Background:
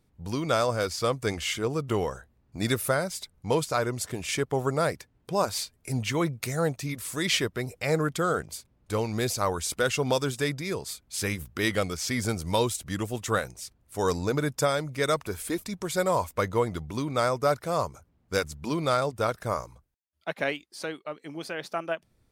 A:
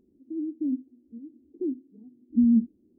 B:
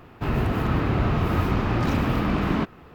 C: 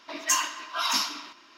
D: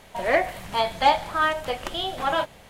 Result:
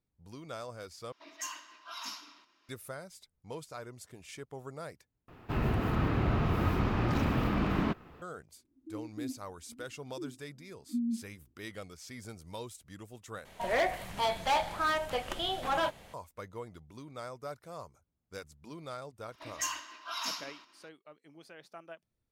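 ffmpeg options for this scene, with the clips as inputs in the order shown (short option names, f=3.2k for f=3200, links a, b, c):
-filter_complex "[3:a]asplit=2[a][b];[0:a]volume=-17.5dB[c];[1:a]asuperpass=centerf=290:order=4:qfactor=2.1[d];[4:a]asoftclip=type=hard:threshold=-19dB[e];[c]asplit=4[f][g][h][i];[f]atrim=end=1.124[j];[a]atrim=end=1.57,asetpts=PTS-STARTPTS,volume=-16dB[k];[g]atrim=start=2.686:end=5.284[l];[2:a]atrim=end=2.94,asetpts=PTS-STARTPTS,volume=-6.5dB[m];[h]atrim=start=8.216:end=13.454[n];[e]atrim=end=2.69,asetpts=PTS-STARTPTS,volume=-5dB[o];[i]atrim=start=16.136[p];[d]atrim=end=2.98,asetpts=PTS-STARTPTS,volume=-11dB,afade=t=in:d=0.004:c=hsin,afade=t=out:st=2.976:d=0.004:c=hsin,adelay=8560[q];[b]atrim=end=1.57,asetpts=PTS-STARTPTS,volume=-10.5dB,afade=t=in:d=0.004:c=hsin,afade=t=out:st=1.566:d=0.004:c=hsin,adelay=19320[r];[j][k]acrossfade=d=0.004:c1=hsin:c2=hsin[s];[s][l]acrossfade=d=0.004:c1=hsin:c2=hsin[t];[t][m]acrossfade=d=0.004:c1=hsin:c2=hsin[u];[u][n]acrossfade=d=0.004:c1=hsin:c2=hsin[v];[v][o]acrossfade=d=0.004:c1=hsin:c2=hsin[w];[w][p]acrossfade=d=0.004:c1=hsin:c2=hsin[x];[x][q][r]amix=inputs=3:normalize=0"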